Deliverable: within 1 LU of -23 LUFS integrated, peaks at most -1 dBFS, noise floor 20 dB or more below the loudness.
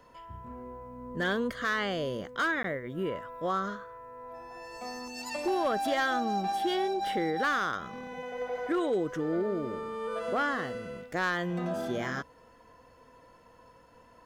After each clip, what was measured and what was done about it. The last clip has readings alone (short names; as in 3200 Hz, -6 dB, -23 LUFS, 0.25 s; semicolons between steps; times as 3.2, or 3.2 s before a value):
clipped 0.5%; flat tops at -22.0 dBFS; dropouts 1; longest dropout 13 ms; loudness -31.5 LUFS; peak -22.0 dBFS; loudness target -23.0 LUFS
-> clip repair -22 dBFS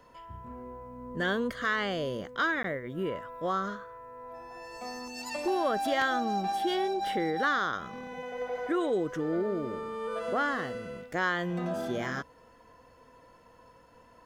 clipped 0.0%; dropouts 1; longest dropout 13 ms
-> interpolate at 2.63, 13 ms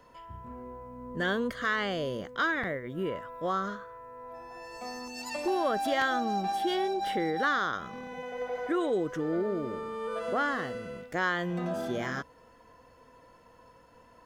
dropouts 0; loudness -31.5 LUFS; peak -13.0 dBFS; loudness target -23.0 LUFS
-> gain +8.5 dB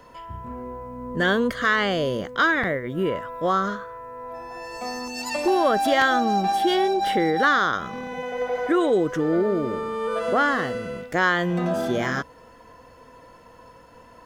loudness -23.0 LUFS; peak -4.5 dBFS; noise floor -50 dBFS